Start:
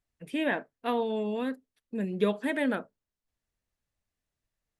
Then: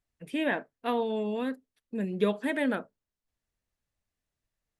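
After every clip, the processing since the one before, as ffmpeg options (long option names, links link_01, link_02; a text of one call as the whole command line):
ffmpeg -i in.wav -af anull out.wav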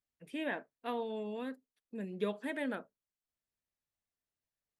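ffmpeg -i in.wav -af "lowshelf=frequency=89:gain=-10.5,volume=-8dB" out.wav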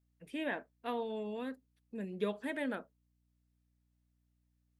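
ffmpeg -i in.wav -af "aeval=exprs='val(0)+0.000178*(sin(2*PI*60*n/s)+sin(2*PI*2*60*n/s)/2+sin(2*PI*3*60*n/s)/3+sin(2*PI*4*60*n/s)/4+sin(2*PI*5*60*n/s)/5)':channel_layout=same" out.wav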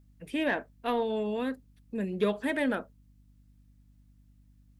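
ffmpeg -i in.wav -af "aeval=exprs='val(0)+0.000398*(sin(2*PI*50*n/s)+sin(2*PI*2*50*n/s)/2+sin(2*PI*3*50*n/s)/3+sin(2*PI*4*50*n/s)/4+sin(2*PI*5*50*n/s)/5)':channel_layout=same,aeval=exprs='0.0841*(cos(1*acos(clip(val(0)/0.0841,-1,1)))-cos(1*PI/2))+0.00422*(cos(5*acos(clip(val(0)/0.0841,-1,1)))-cos(5*PI/2))':channel_layout=same,volume=7dB" out.wav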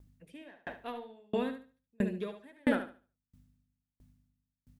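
ffmpeg -i in.wav -filter_complex "[0:a]asplit=2[link_01][link_02];[link_02]aecho=0:1:72|144|216|288|360:0.562|0.225|0.09|0.036|0.0144[link_03];[link_01][link_03]amix=inputs=2:normalize=0,aeval=exprs='val(0)*pow(10,-39*if(lt(mod(1.5*n/s,1),2*abs(1.5)/1000),1-mod(1.5*n/s,1)/(2*abs(1.5)/1000),(mod(1.5*n/s,1)-2*abs(1.5)/1000)/(1-2*abs(1.5)/1000))/20)':channel_layout=same,volume=3dB" out.wav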